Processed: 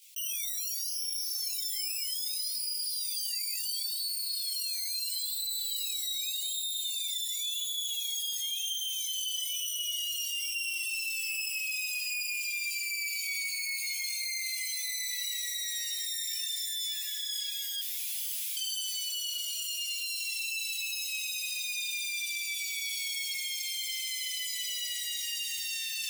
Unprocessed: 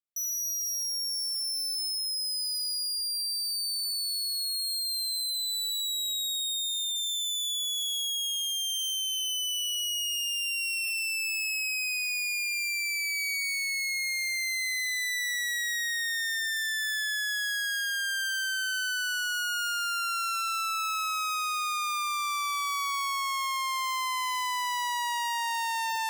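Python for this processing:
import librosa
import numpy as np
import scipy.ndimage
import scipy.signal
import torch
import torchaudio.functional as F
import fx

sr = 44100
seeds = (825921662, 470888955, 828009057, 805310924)

y = fx.self_delay(x, sr, depth_ms=0.069)
y = fx.chorus_voices(y, sr, voices=6, hz=0.48, base_ms=18, depth_ms=1.6, mix_pct=65)
y = fx.overflow_wrap(y, sr, gain_db=40.0, at=(17.81, 18.57))
y = fx.rider(y, sr, range_db=4, speed_s=0.5)
y = scipy.signal.sosfilt(scipy.signal.butter(12, 2200.0, 'highpass', fs=sr, output='sos'), y)
y = fx.echo_diffused(y, sr, ms=769, feedback_pct=47, wet_db=-14.0)
y = fx.env_flatten(y, sr, amount_pct=70)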